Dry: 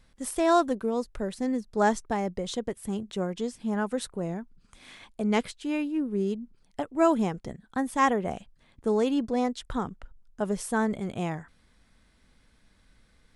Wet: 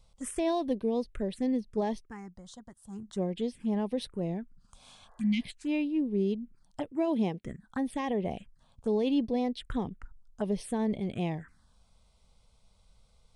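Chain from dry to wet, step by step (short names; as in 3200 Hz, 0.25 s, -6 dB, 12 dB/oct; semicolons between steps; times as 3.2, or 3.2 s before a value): 1.8–3.19 dip -11 dB, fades 0.30 s; 4.93–5.49 spectral repair 330–2000 Hz before; 6.92–7.45 HPF 150 Hz 12 dB/oct; limiter -18.5 dBFS, peak gain reduction 7.5 dB; envelope phaser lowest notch 280 Hz, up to 1400 Hz, full sweep at -27.5 dBFS; downsampling 22050 Hz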